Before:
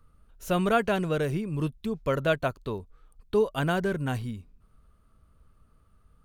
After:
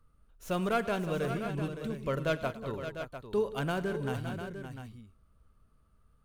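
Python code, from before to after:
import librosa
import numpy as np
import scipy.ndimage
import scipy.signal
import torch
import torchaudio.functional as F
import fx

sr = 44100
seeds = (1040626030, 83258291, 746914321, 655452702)

y = fx.tracing_dist(x, sr, depth_ms=0.058)
y = fx.echo_multitap(y, sr, ms=(43, 104, 186, 565, 700), db=(-19.0, -18.0, -15.0, -10.0, -10.0))
y = y * 10.0 ** (-6.0 / 20.0)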